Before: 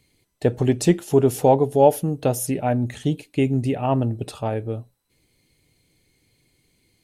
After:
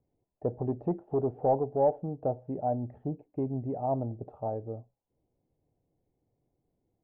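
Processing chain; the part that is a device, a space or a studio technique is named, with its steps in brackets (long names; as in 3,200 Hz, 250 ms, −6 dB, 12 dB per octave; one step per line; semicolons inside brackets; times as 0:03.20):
overdriven synthesiser ladder filter (soft clipping −10 dBFS, distortion −15 dB; transistor ladder low-pass 860 Hz, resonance 50%)
level −2.5 dB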